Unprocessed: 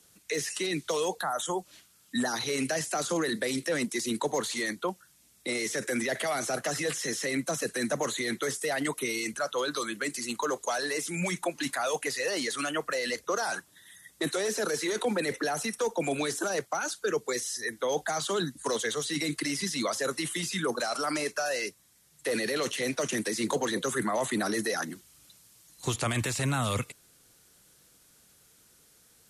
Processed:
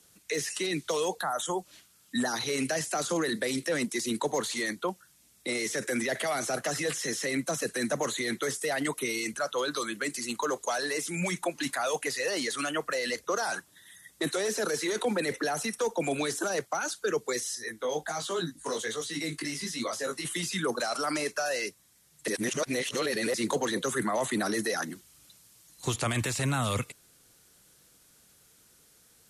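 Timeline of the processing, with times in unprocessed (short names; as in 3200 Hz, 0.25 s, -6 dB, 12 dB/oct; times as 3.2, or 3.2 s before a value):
17.55–20.25 chorus 1.3 Hz, delay 17 ms, depth 2.9 ms
22.28–23.34 reverse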